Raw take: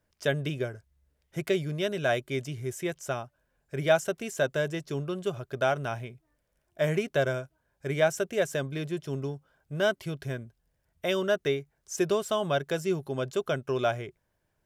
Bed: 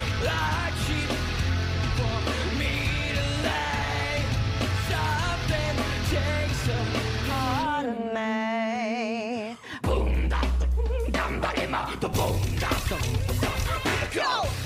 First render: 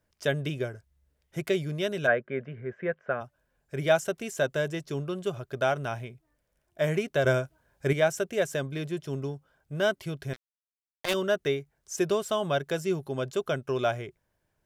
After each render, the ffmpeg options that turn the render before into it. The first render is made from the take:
-filter_complex "[0:a]asplit=3[a][b][c];[a]afade=t=out:st=2.06:d=0.02[d];[b]highpass=130,equalizer=f=140:t=q:w=4:g=-4,equalizer=f=210:t=q:w=4:g=9,equalizer=f=310:t=q:w=4:g=-10,equalizer=f=500:t=q:w=4:g=8,equalizer=f=860:t=q:w=4:g=-4,equalizer=f=1.6k:t=q:w=4:g=9,lowpass=f=2.1k:w=0.5412,lowpass=f=2.1k:w=1.3066,afade=t=in:st=2.06:d=0.02,afade=t=out:st=3.2:d=0.02[e];[c]afade=t=in:st=3.2:d=0.02[f];[d][e][f]amix=inputs=3:normalize=0,asettb=1/sr,asplit=3[g][h][i];[g]atrim=end=7.244[j];[h]atrim=start=7.24:end=7.93,asetpts=PTS-STARTPTS,afade=t=in:d=0.004:c=qsin,afade=t=out:st=0.686:d=0.004:c=qsin,acontrast=63[k];[i]atrim=start=7.926[l];[j][k]acrossfade=d=0.004:c1=hsin:c2=qsin[m];[m][l]acrossfade=d=0.004:c1=qsin:c2=hsin,asettb=1/sr,asplit=3[n][o][p];[n]atrim=end=10.334[q];[o]atrim=start=10.33:end=11.14,asetpts=PTS-STARTPTS,afade=t=in:d=0.004:c=qsin,afade=t=out:st=0.806:d=0.004:c=qsin,acrusher=bits=3:mix=0:aa=0.5[r];[p]atrim=start=11.136[s];[q][r]acrossfade=d=0.004:c1=hsin:c2=qsin[t];[t][s]acrossfade=d=0.004:c1=qsin:c2=hsin"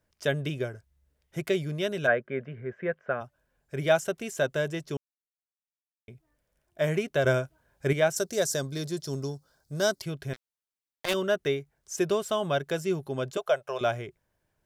-filter_complex "[0:a]asettb=1/sr,asplit=3[a][b][c];[a]atrim=end=8.164[d];[b]atrim=start=8.16:end=10.02,asetpts=PTS-STARTPTS,afade=t=in:d=0.004:c=qsin,afade=t=out:st=1.856:d=0.004:c=qsin,highshelf=f=3.6k:t=q:w=3:g=8.5[e];[c]atrim=start=10.016[f];[d][e]acrossfade=d=0.004:c1=hsin:c2=qsin[g];[g][f]acrossfade=d=0.004:c1=qsin:c2=hsin,asettb=1/sr,asplit=3[h][i][j];[h]atrim=end=13.374[k];[i]atrim=start=13.37:end=13.81,asetpts=PTS-STARTPTS,afade=t=in:d=0.004:c=qsin,afade=t=out:st=0.436:d=0.004:c=qsin,lowshelf=f=410:t=q:w=3:g=-13.5[l];[j]atrim=start=13.806[m];[k][l]acrossfade=d=0.004:c1=hsin:c2=qsin[n];[n][m]acrossfade=d=0.004:c1=qsin:c2=hsin,asplit=3[o][p][q];[o]atrim=end=4.97,asetpts=PTS-STARTPTS,afade=t=out:st=4.966:d=0.004:c=hsin[r];[p]atrim=start=4.97:end=6.08,asetpts=PTS-STARTPTS,volume=0[s];[q]atrim=start=6.08,asetpts=PTS-STARTPTS,afade=t=in:d=0.004:c=hsin[t];[r][s][t]concat=n=3:v=0:a=1"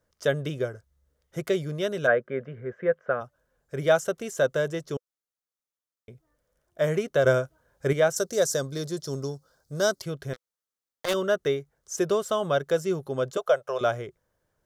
-af "equalizer=f=500:t=o:w=0.33:g=8,equalizer=f=1.25k:t=o:w=0.33:g=6,equalizer=f=2.5k:t=o:w=0.33:g=-6,equalizer=f=6.3k:t=o:w=0.33:g=3"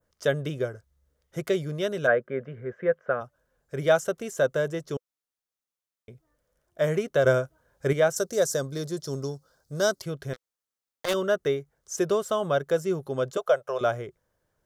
-af "adynamicequalizer=threshold=0.00631:dfrequency=4100:dqfactor=0.72:tfrequency=4100:tqfactor=0.72:attack=5:release=100:ratio=0.375:range=2:mode=cutabove:tftype=bell"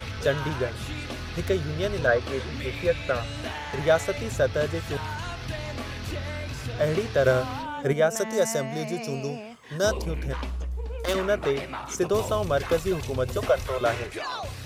-filter_complex "[1:a]volume=-7dB[a];[0:a][a]amix=inputs=2:normalize=0"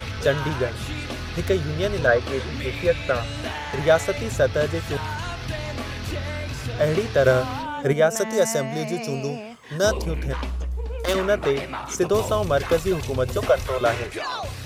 -af "volume=3.5dB"

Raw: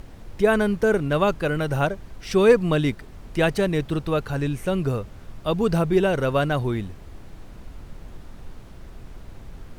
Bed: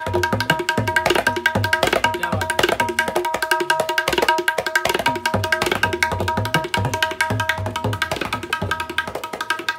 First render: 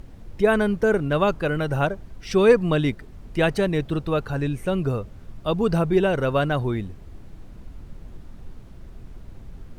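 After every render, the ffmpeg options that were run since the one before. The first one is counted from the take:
-af "afftdn=nr=6:nf=-43"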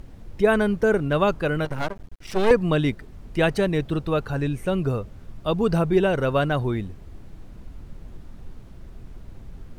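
-filter_complex "[0:a]asettb=1/sr,asplit=3[a][b][c];[a]atrim=end=1.654[d];[b]atrim=start=1.65:end=2.51,asetpts=PTS-STARTPTS,afade=t=in:d=0.004:c=qsin,afade=t=out:st=0.856:d=0.004:c=qsin,aeval=exprs='max(val(0),0)':c=same[e];[c]atrim=start=2.506[f];[d][e]acrossfade=d=0.004:c1=hsin:c2=qsin[g];[g][f]acrossfade=d=0.004:c1=qsin:c2=hsin"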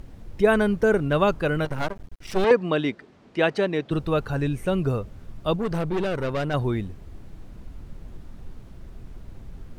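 -filter_complex "[0:a]asettb=1/sr,asplit=3[a][b][c];[a]atrim=end=2.444[d];[b]atrim=start=2.44:end=3.91,asetpts=PTS-STARTPTS,afade=t=in:d=0.004:c=qsin,afade=t=out:st=1.466:d=0.004:c=qsin,highpass=240,lowpass=5.2k[e];[c]atrim=start=3.906[f];[d][e]acrossfade=d=0.004:c1=hsin:c2=qsin[g];[g][f]acrossfade=d=0.004:c1=qsin:c2=hsin,asettb=1/sr,asplit=3[h][i][j];[h]atrim=end=5.564[k];[i]atrim=start=5.56:end=6.54,asetpts=PTS-STARTPTS,afade=t=in:d=0.004:c=qsin,afade=t=out:st=0.976:d=0.004:c=qsin,aeval=exprs='(tanh(12.6*val(0)+0.55)-tanh(0.55))/12.6':c=same[l];[j]atrim=start=6.536[m];[k][l]acrossfade=d=0.004:c1=hsin:c2=qsin[n];[n][m]acrossfade=d=0.004:c1=qsin:c2=hsin"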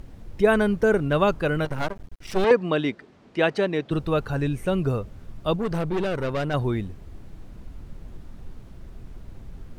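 -af anull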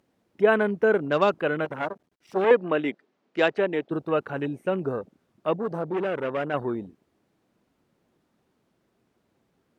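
-af "highpass=260,afwtdn=0.0158"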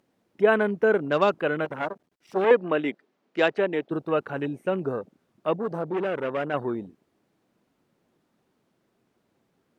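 -af "equalizer=f=60:t=o:w=0.91:g=-8.5"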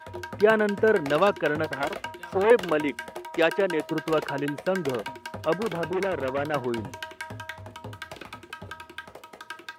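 -filter_complex "[1:a]volume=-17.5dB[a];[0:a][a]amix=inputs=2:normalize=0"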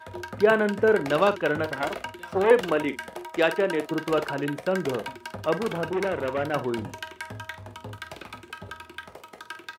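-filter_complex "[0:a]asplit=2[a][b];[b]adelay=48,volume=-12dB[c];[a][c]amix=inputs=2:normalize=0"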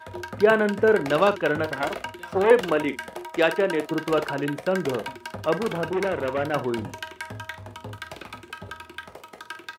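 -af "volume=1.5dB"

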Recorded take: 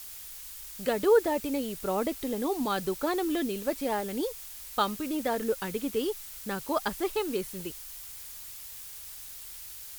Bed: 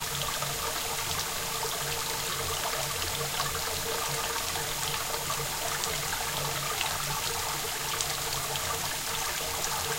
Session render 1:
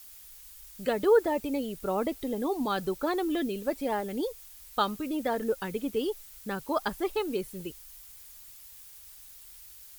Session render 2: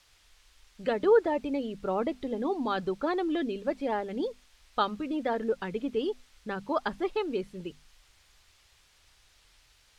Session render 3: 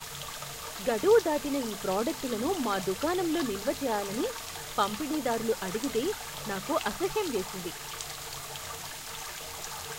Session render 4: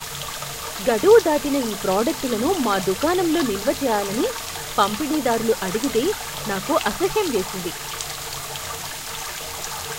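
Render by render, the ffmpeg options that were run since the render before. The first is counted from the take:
-af "afftdn=nr=8:nf=-44"
-af "lowpass=4k,bandreject=f=50:t=h:w=6,bandreject=f=100:t=h:w=6,bandreject=f=150:t=h:w=6,bandreject=f=200:t=h:w=6,bandreject=f=250:t=h:w=6"
-filter_complex "[1:a]volume=-8dB[a];[0:a][a]amix=inputs=2:normalize=0"
-af "volume=9dB"

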